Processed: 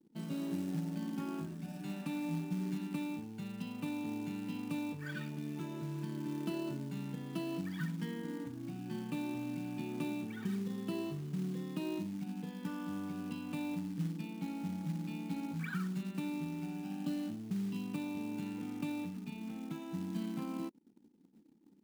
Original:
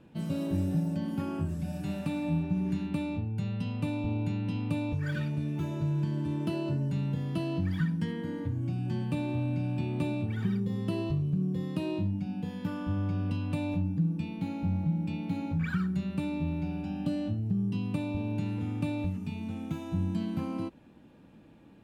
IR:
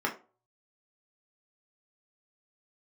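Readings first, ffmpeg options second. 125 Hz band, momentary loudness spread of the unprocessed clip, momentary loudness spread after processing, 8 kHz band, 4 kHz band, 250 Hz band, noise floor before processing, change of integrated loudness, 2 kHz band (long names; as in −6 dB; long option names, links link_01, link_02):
−12.0 dB, 4 LU, 4 LU, can't be measured, −4.0 dB, −6.0 dB, −54 dBFS, −7.5 dB, −4.5 dB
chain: -af "highpass=frequency=180:width=0.5412,highpass=frequency=180:width=1.3066,equalizer=frequency=570:width=4.7:gain=-8,anlmdn=0.00158,acrusher=bits=5:mode=log:mix=0:aa=0.000001,volume=-4.5dB"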